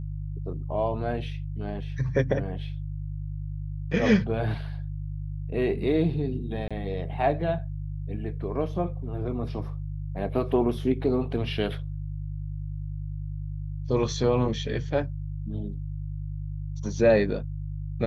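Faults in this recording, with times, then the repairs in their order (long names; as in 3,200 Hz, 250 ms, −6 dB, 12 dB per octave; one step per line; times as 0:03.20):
mains hum 50 Hz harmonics 3 −33 dBFS
0:06.68–0:06.71: drop-out 26 ms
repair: hum removal 50 Hz, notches 3
repair the gap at 0:06.68, 26 ms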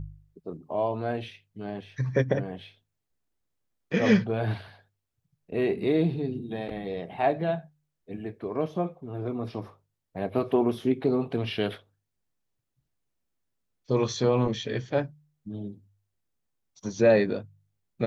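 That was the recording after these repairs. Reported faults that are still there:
none of them is left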